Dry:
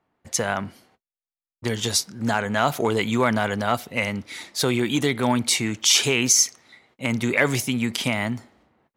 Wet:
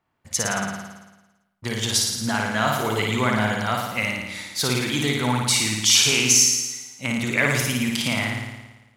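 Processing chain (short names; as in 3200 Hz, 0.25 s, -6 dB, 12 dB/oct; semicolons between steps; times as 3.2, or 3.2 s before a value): bell 440 Hz -6.5 dB 2.1 oct; on a send: flutter echo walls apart 9.6 m, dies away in 1.1 s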